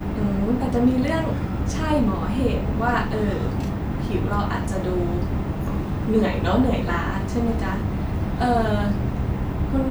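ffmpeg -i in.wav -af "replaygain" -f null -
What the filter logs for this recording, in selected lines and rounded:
track_gain = +4.4 dB
track_peak = 0.311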